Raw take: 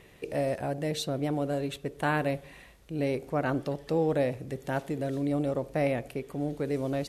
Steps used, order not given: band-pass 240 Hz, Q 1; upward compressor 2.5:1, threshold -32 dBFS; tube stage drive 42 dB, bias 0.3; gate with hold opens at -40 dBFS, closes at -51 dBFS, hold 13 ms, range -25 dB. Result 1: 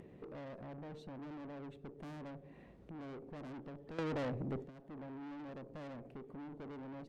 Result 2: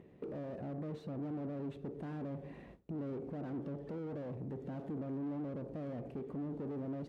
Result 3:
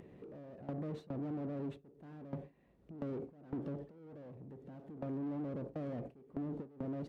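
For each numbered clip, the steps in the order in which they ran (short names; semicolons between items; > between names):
band-pass > tube stage > gate with hold > upward compressor; gate with hold > tube stage > upward compressor > band-pass; tube stage > band-pass > gate with hold > upward compressor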